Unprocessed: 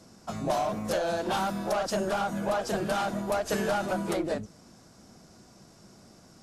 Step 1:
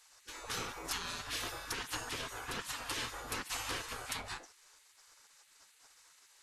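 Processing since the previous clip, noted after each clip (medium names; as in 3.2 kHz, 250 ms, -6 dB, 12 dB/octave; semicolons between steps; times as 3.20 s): flange 0.63 Hz, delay 9.6 ms, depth 4.7 ms, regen +89%; spectral gate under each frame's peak -20 dB weak; trim +5.5 dB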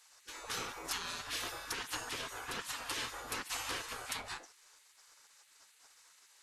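bass shelf 200 Hz -6.5 dB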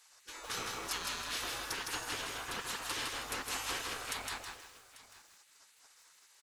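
delay 842 ms -18 dB; bit-crushed delay 160 ms, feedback 35%, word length 10-bit, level -3 dB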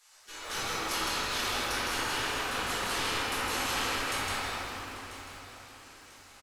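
feedback delay 992 ms, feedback 36%, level -15 dB; reverberation RT60 2.9 s, pre-delay 5 ms, DRR -10 dB; trim -2 dB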